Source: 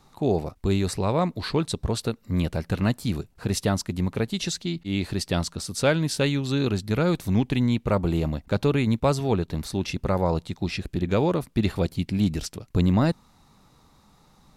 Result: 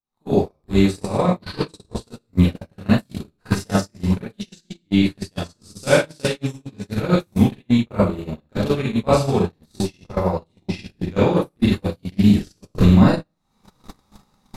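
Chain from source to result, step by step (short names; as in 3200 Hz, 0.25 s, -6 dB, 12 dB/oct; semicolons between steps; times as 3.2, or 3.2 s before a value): recorder AGC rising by 71 dB/s; spectral repair 6.46–6.85, 350–5200 Hz both; Schroeder reverb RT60 0.64 s, combs from 30 ms, DRR -8 dB; gate -12 dBFS, range -43 dB; gain -1 dB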